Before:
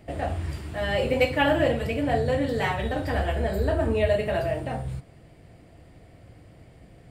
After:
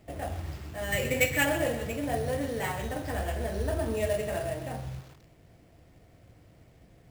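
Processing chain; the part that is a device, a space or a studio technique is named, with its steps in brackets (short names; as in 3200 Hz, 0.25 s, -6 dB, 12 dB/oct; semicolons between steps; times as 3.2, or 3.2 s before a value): 0.92–1.45 graphic EQ 125/1000/2000 Hz +7/-6/+11 dB; early companding sampler (sample-rate reducer 10000 Hz, jitter 0%; companded quantiser 6-bit); lo-fi delay 0.13 s, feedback 55%, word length 6-bit, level -11 dB; gain -6.5 dB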